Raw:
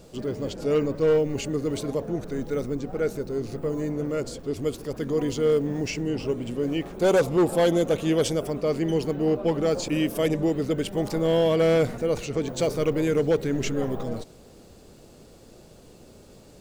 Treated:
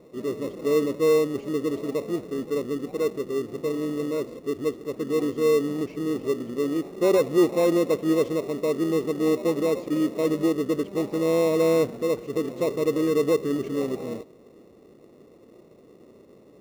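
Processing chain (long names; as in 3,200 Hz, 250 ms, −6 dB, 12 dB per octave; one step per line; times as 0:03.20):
resonant band-pass 380 Hz, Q 1.3
in parallel at −7.5 dB: decimation without filtering 28×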